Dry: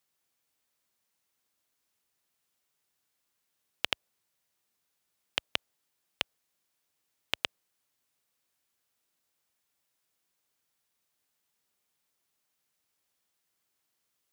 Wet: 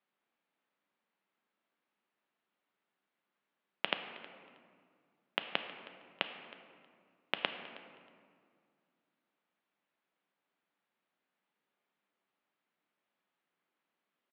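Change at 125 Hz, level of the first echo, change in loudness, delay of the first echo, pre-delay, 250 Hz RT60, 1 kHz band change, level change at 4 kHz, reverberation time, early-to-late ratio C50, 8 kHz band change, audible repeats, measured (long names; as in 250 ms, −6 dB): −4.0 dB, −19.5 dB, −4.0 dB, 317 ms, 3 ms, 2.8 s, +2.0 dB, −4.5 dB, 2.1 s, 8.0 dB, below −25 dB, 2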